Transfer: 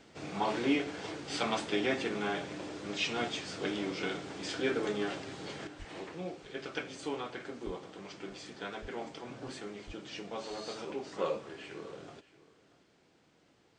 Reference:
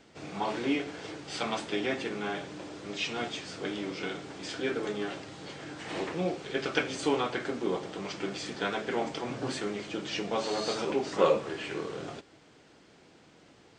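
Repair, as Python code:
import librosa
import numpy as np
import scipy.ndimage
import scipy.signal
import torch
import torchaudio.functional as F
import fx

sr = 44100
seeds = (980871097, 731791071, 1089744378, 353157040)

y = fx.fix_deplosive(x, sr, at_s=(5.78, 7.65, 8.81, 9.86))
y = fx.fix_echo_inverse(y, sr, delay_ms=630, level_db=-19.0)
y = fx.fix_level(y, sr, at_s=5.67, step_db=9.5)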